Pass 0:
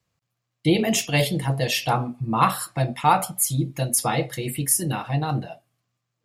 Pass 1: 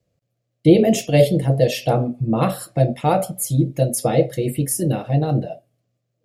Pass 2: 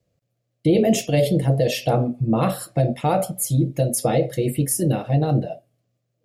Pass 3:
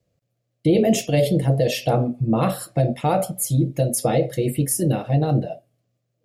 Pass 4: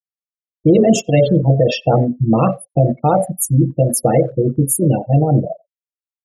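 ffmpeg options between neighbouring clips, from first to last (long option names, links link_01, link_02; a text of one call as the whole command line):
ffmpeg -i in.wav -af "lowshelf=frequency=750:width_type=q:width=3:gain=8.5,volume=-3dB" out.wav
ffmpeg -i in.wav -af "alimiter=limit=-9.5dB:level=0:latency=1:release=37" out.wav
ffmpeg -i in.wav -af anull out.wav
ffmpeg -i in.wav -filter_complex "[0:a]afftfilt=real='re*gte(hypot(re,im),0.0708)':imag='im*gte(hypot(re,im),0.0708)':win_size=1024:overlap=0.75,asplit=2[link_01][link_02];[link_02]adelay=90,highpass=300,lowpass=3400,asoftclip=type=hard:threshold=-18.5dB,volume=-29dB[link_03];[link_01][link_03]amix=inputs=2:normalize=0,volume=6dB" out.wav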